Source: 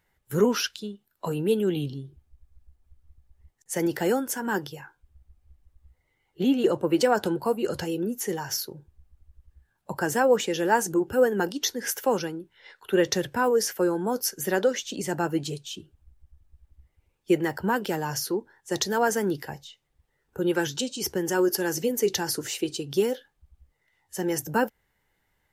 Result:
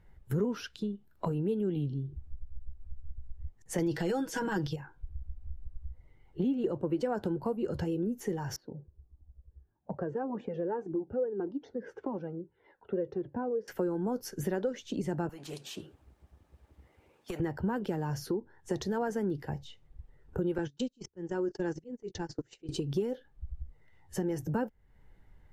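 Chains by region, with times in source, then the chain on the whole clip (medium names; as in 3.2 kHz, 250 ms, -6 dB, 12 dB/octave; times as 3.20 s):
3.78–4.76 s: peaking EQ 4.4 kHz +13 dB 2 oct + comb 6.2 ms, depth 72% + transient shaper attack -7 dB, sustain +5 dB
8.56–13.68 s: band-pass filter 400 Hz, Q 0.91 + distance through air 65 m + Shepard-style flanger falling 1.7 Hz
15.29–17.40 s: high-pass 380 Hz + compression 4:1, threshold -30 dBFS + spectrum-flattening compressor 2:1
20.58–22.69 s: steep low-pass 7.7 kHz 72 dB/octave + gate -30 dBFS, range -29 dB + slow attack 530 ms
whole clip: tilt EQ -3.5 dB/octave; compression 3:1, threshold -37 dBFS; trim +3 dB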